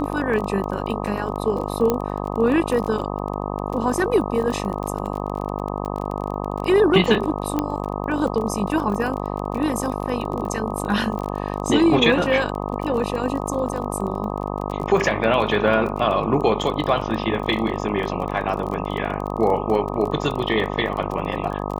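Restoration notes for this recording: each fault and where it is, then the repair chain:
mains buzz 50 Hz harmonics 25 −27 dBFS
surface crackle 25 per second −27 dBFS
0:01.90: click −7 dBFS
0:07.59: click −9 dBFS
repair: click removal
hum removal 50 Hz, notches 25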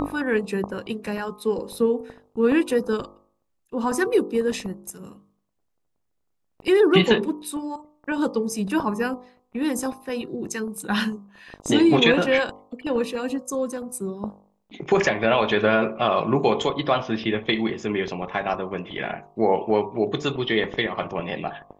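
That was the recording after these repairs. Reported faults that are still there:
none of them is left

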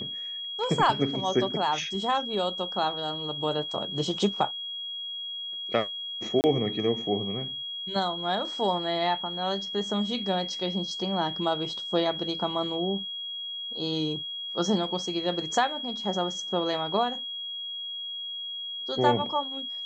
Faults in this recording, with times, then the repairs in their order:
whistle 3,300 Hz −33 dBFS
0:06.41–0:06.44: drop-out 29 ms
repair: notch filter 3,300 Hz, Q 30
repair the gap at 0:06.41, 29 ms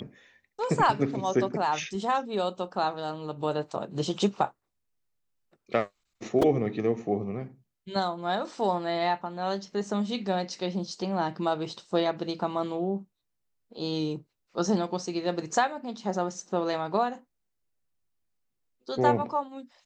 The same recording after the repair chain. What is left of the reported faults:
none of them is left

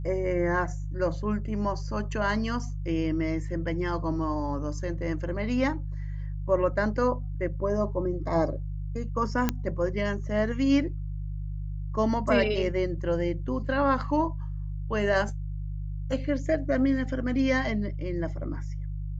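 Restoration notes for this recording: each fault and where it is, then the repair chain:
mains hum 50 Hz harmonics 3 −33 dBFS
0:09.49: click −10 dBFS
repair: click removal
hum removal 50 Hz, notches 3

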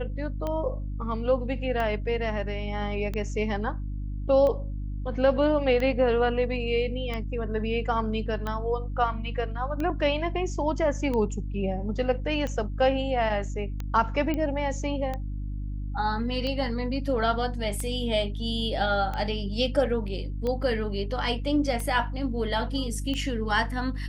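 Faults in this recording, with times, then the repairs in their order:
mains hum 50 Hz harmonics 6 −32 dBFS
scratch tick 45 rpm −19 dBFS
0:14.34: click −17 dBFS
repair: click removal
hum removal 50 Hz, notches 6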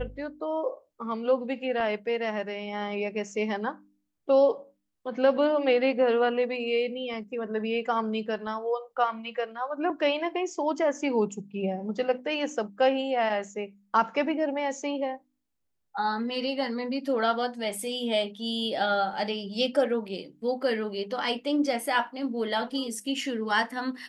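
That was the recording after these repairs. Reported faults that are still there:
none of them is left

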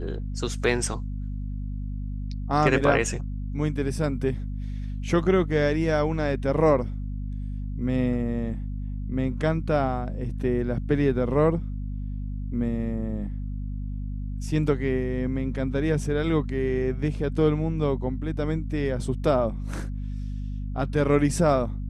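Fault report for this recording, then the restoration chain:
mains hum 50 Hz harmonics 5 −31 dBFS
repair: hum removal 50 Hz, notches 5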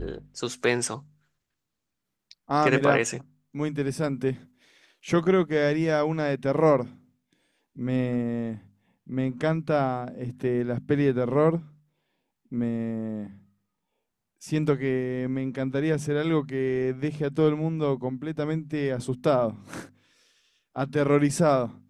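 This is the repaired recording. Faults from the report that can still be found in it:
none of them is left

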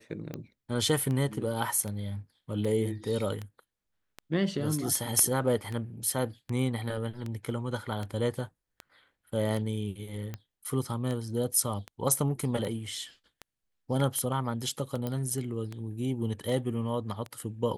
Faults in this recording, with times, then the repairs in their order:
scratch tick 78 rpm −23 dBFS
0:15.07: click −20 dBFS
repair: click removal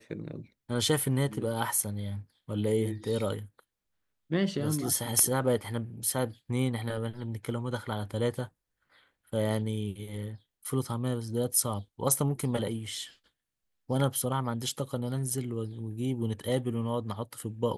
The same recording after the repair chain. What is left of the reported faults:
none of them is left

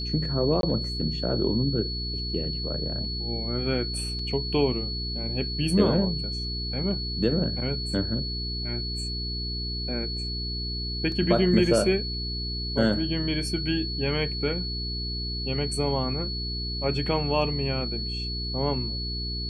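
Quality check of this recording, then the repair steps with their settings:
mains hum 60 Hz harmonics 7 −33 dBFS
whistle 4,400 Hz −32 dBFS
0:00.61–0:00.63: drop-out 22 ms
0:04.19: drop-out 3.2 ms
0:11.12: drop-out 2.1 ms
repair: hum removal 60 Hz, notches 7
notch filter 4,400 Hz, Q 30
repair the gap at 0:00.61, 22 ms
repair the gap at 0:04.19, 3.2 ms
repair the gap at 0:11.12, 2.1 ms

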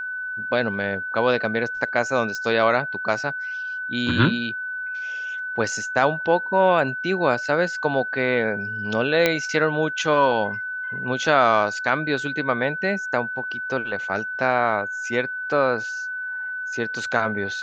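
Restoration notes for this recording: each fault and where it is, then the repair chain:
whistle 1,500 Hz −27 dBFS
0:02.35: click −17 dBFS
0:09.26: click −4 dBFS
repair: click removal
notch filter 1,500 Hz, Q 30

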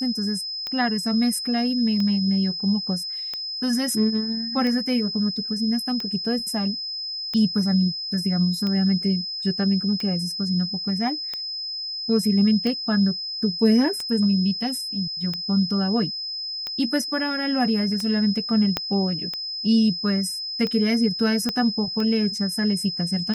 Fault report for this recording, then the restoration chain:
scratch tick 45 rpm −16 dBFS
whistle 5,100 Hz −28 dBFS
0:18.77: click −8 dBFS
0:21.49: click −11 dBFS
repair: click removal
notch filter 5,100 Hz, Q 30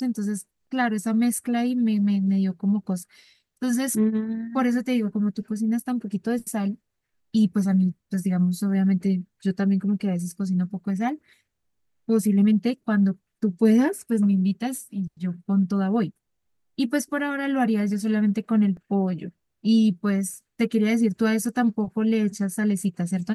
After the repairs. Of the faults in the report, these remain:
0:18.77: click
0:21.49: click

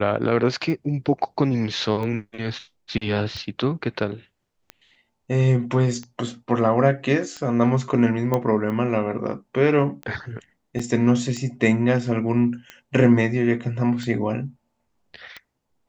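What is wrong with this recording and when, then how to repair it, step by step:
scratch tick 45 rpm −20 dBFS
0:08.34: click −10 dBFS
0:10.79: drop-out 4.7 ms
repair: click removal
repair the gap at 0:10.79, 4.7 ms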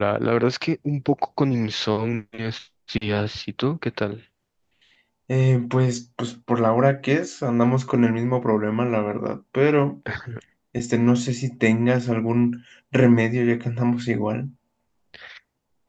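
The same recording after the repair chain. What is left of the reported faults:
none of them is left

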